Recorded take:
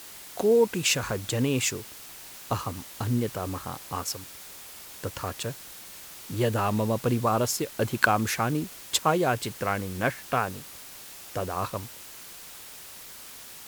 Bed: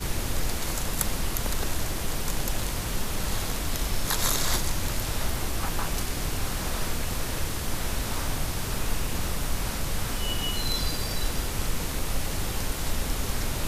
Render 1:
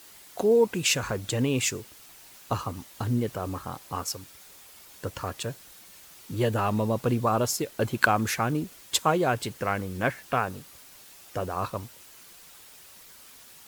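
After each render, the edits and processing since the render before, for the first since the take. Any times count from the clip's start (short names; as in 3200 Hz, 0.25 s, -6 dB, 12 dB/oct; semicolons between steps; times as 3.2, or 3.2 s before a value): denoiser 7 dB, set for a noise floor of -45 dBFS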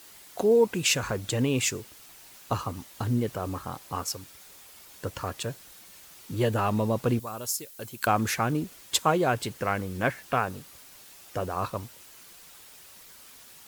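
7.19–8.07 pre-emphasis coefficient 0.8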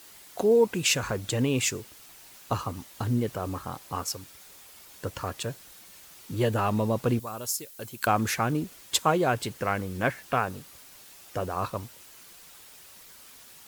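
nothing audible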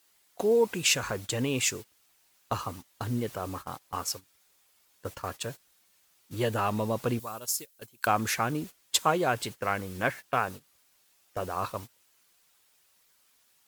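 gate -36 dBFS, range -16 dB; low shelf 470 Hz -5.5 dB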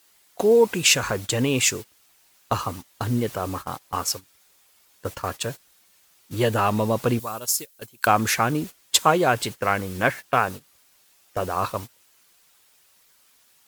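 gain +7 dB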